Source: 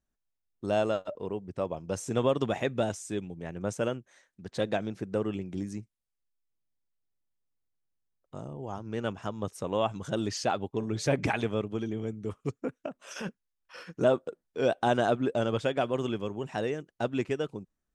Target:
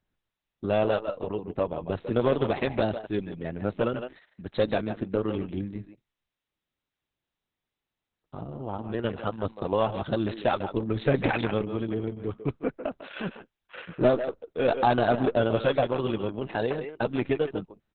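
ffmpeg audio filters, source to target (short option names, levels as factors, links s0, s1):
-filter_complex "[0:a]asplit=2[s0][s1];[s1]adelay=150,highpass=300,lowpass=3400,asoftclip=type=hard:threshold=0.1,volume=0.355[s2];[s0][s2]amix=inputs=2:normalize=0,aeval=exprs='0.251*(cos(1*acos(clip(val(0)/0.251,-1,1)))-cos(1*PI/2))+0.00251*(cos(2*acos(clip(val(0)/0.251,-1,1)))-cos(2*PI/2))+0.00282*(cos(3*acos(clip(val(0)/0.251,-1,1)))-cos(3*PI/2))+0.0251*(cos(4*acos(clip(val(0)/0.251,-1,1)))-cos(4*PI/2))+0.02*(cos(5*acos(clip(val(0)/0.251,-1,1)))-cos(5*PI/2))':c=same,volume=1.26" -ar 48000 -c:a libopus -b:a 6k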